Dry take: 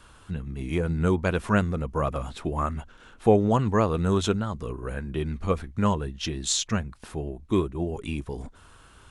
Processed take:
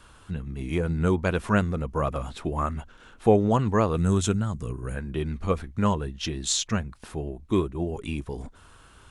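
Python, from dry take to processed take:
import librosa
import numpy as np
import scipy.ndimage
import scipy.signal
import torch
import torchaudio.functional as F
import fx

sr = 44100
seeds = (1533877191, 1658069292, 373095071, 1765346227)

y = fx.graphic_eq(x, sr, hz=(125, 500, 1000, 4000, 8000), db=(5, -4, -4, -5, 8), at=(3.96, 4.96))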